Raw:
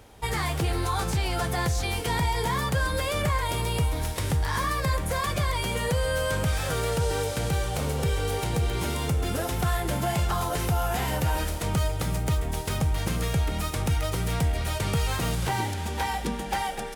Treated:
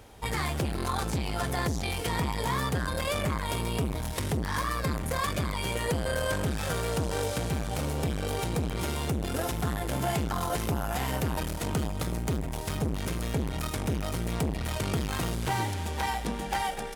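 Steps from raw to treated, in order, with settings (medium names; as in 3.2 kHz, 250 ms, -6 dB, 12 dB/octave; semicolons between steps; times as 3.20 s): transformer saturation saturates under 380 Hz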